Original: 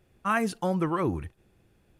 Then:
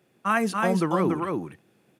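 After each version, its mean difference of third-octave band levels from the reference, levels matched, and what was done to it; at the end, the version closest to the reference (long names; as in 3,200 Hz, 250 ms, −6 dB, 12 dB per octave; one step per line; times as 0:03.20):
5.0 dB: high-pass filter 150 Hz 24 dB per octave
on a send: single-tap delay 285 ms −3.5 dB
on the sum: level +2.5 dB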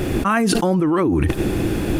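9.0 dB: parametric band 300 Hz +10.5 dB 0.66 octaves
envelope flattener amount 100%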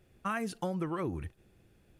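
2.5 dB: parametric band 970 Hz −3.5 dB 0.77 octaves
downward compressor 5 to 1, threshold −31 dBFS, peak gain reduction 8.5 dB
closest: third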